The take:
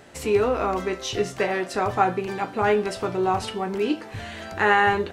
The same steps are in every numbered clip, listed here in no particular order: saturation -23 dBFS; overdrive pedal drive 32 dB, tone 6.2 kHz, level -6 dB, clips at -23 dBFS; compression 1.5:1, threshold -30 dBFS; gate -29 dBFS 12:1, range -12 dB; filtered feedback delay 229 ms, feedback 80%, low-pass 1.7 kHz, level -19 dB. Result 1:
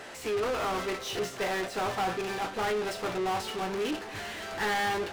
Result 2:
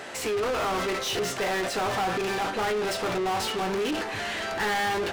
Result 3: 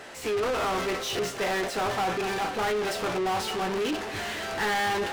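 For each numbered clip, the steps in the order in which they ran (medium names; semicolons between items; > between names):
saturation > overdrive pedal > compression > gate > filtered feedback delay; gate > saturation > compression > overdrive pedal > filtered feedback delay; filtered feedback delay > saturation > compression > overdrive pedal > gate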